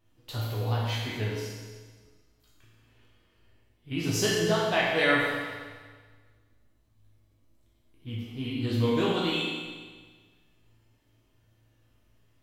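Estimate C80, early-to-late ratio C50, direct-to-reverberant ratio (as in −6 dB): 1.5 dB, −1.0 dB, −6.5 dB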